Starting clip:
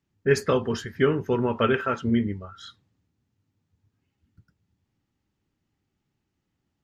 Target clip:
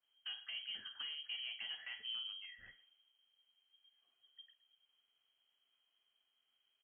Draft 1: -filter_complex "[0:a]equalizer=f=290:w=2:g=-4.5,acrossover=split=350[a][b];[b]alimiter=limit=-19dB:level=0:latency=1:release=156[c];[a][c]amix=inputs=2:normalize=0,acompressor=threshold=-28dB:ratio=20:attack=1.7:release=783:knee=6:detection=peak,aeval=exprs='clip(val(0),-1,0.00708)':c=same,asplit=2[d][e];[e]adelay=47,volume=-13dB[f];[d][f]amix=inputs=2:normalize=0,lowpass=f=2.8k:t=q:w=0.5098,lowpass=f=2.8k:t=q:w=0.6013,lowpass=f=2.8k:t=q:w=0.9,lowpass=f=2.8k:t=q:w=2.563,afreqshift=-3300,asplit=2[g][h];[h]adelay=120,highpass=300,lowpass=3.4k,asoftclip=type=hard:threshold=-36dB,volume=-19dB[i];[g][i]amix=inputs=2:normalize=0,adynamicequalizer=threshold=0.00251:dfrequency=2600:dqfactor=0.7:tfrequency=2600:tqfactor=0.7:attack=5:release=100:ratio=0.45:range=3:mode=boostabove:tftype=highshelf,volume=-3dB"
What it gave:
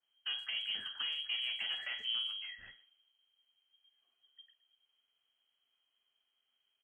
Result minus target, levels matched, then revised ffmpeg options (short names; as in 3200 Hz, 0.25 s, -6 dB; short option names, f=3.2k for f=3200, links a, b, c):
compressor: peak gain reduction -8.5 dB
-filter_complex "[0:a]equalizer=f=290:w=2:g=-4.5,acrossover=split=350[a][b];[b]alimiter=limit=-19dB:level=0:latency=1:release=156[c];[a][c]amix=inputs=2:normalize=0,acompressor=threshold=-37dB:ratio=20:attack=1.7:release=783:knee=6:detection=peak,aeval=exprs='clip(val(0),-1,0.00708)':c=same,asplit=2[d][e];[e]adelay=47,volume=-13dB[f];[d][f]amix=inputs=2:normalize=0,lowpass=f=2.8k:t=q:w=0.5098,lowpass=f=2.8k:t=q:w=0.6013,lowpass=f=2.8k:t=q:w=0.9,lowpass=f=2.8k:t=q:w=2.563,afreqshift=-3300,asplit=2[g][h];[h]adelay=120,highpass=300,lowpass=3.4k,asoftclip=type=hard:threshold=-36dB,volume=-19dB[i];[g][i]amix=inputs=2:normalize=0,adynamicequalizer=threshold=0.00251:dfrequency=2600:dqfactor=0.7:tfrequency=2600:tqfactor=0.7:attack=5:release=100:ratio=0.45:range=3:mode=boostabove:tftype=highshelf,volume=-3dB"